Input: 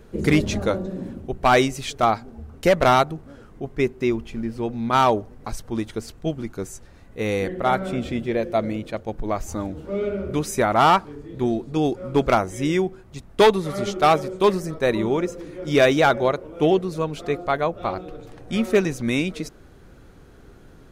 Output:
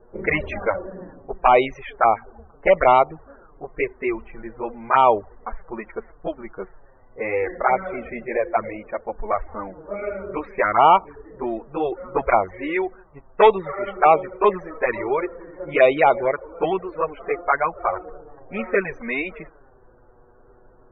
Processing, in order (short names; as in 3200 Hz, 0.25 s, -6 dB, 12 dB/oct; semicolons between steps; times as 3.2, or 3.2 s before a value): low-pass opened by the level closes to 800 Hz, open at -14.5 dBFS; graphic EQ 125/250/500/1000/2000/4000/8000 Hz -9/-7/+4/+7/+9/-6/-10 dB; envelope flanger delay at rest 8.6 ms, full sweep at -8.5 dBFS; loudest bins only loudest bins 64